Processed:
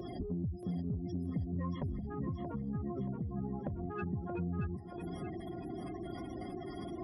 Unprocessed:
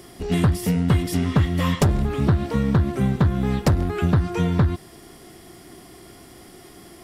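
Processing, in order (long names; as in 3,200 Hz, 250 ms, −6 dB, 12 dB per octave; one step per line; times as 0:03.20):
stylus tracing distortion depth 0.063 ms
gate on every frequency bin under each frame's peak −15 dB strong
0:01.99–0:04.35: spectral tilt +2.5 dB per octave
downward compressor 6 to 1, threshold −40 dBFS, peak gain reduction 23 dB
soft clipping −30 dBFS, distortion −25 dB
notch comb filter 450 Hz
feedback echo with a high-pass in the loop 628 ms, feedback 44%, high-pass 170 Hz, level −6 dB
level +4.5 dB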